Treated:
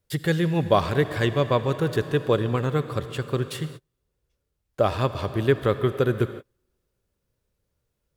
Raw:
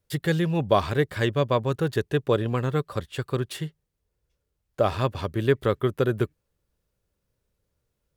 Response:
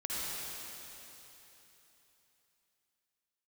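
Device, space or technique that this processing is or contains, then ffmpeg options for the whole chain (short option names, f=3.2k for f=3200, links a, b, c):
keyed gated reverb: -filter_complex "[0:a]asplit=3[a][b][c];[1:a]atrim=start_sample=2205[d];[b][d]afir=irnorm=-1:irlink=0[e];[c]apad=whole_len=359997[f];[e][f]sidechaingate=range=-40dB:threshold=-42dB:ratio=16:detection=peak,volume=-14.5dB[g];[a][g]amix=inputs=2:normalize=0"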